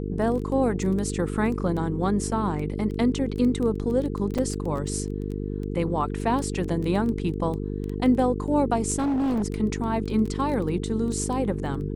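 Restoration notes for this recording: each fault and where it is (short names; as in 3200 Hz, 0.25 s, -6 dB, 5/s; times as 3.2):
buzz 50 Hz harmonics 9 -30 dBFS
crackle 12/s
4.38–4.39 gap 5.1 ms
8.98–9.44 clipped -21.5 dBFS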